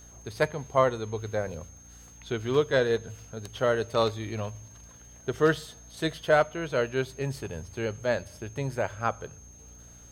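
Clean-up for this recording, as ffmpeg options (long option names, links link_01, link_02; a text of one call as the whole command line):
ffmpeg -i in.wav -af "adeclick=threshold=4,bandreject=frequency=58.9:width_type=h:width=4,bandreject=frequency=117.8:width_type=h:width=4,bandreject=frequency=176.7:width_type=h:width=4,bandreject=frequency=235.6:width_type=h:width=4,bandreject=frequency=294.5:width_type=h:width=4,bandreject=frequency=6400:width=30" out.wav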